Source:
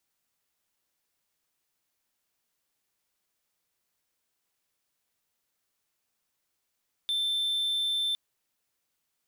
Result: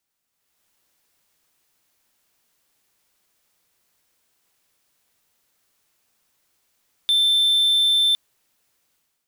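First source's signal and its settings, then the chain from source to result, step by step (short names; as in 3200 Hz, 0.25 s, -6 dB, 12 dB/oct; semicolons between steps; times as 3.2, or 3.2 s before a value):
tone triangle 3550 Hz -24 dBFS 1.06 s
AGC gain up to 11 dB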